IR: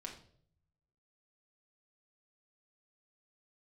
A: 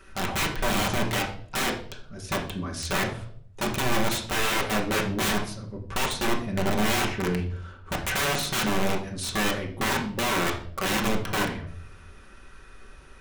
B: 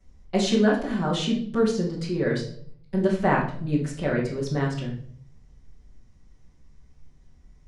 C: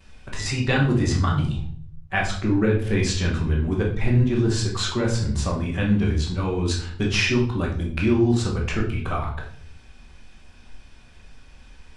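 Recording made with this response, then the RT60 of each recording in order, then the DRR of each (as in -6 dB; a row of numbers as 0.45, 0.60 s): A; 0.60, 0.55, 0.55 s; -1.0, -10.5, -15.0 dB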